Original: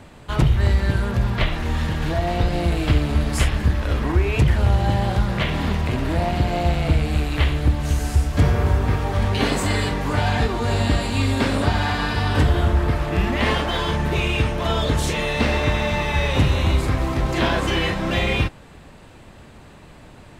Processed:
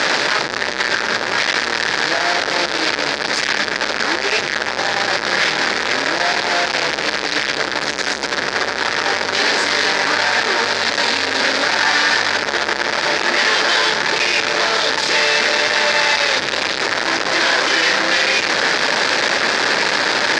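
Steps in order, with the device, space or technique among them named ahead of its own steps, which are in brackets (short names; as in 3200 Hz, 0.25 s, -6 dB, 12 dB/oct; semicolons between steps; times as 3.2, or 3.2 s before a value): home computer beeper (infinite clipping; speaker cabinet 560–5600 Hz, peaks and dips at 710 Hz -5 dB, 1100 Hz -5 dB, 1700 Hz +5 dB, 2900 Hz -5 dB, 4800 Hz +4 dB); gain +8 dB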